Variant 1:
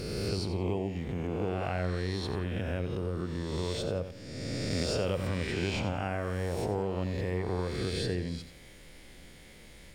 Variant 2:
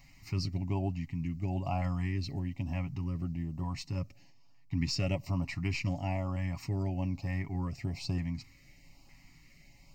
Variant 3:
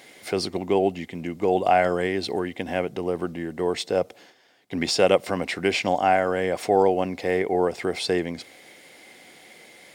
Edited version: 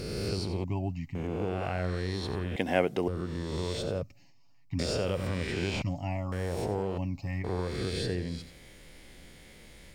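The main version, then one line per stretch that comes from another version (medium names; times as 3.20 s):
1
0.64–1.15 s: from 2
2.56–3.08 s: from 3
4.02–4.79 s: from 2
5.82–6.32 s: from 2
6.98–7.44 s: from 2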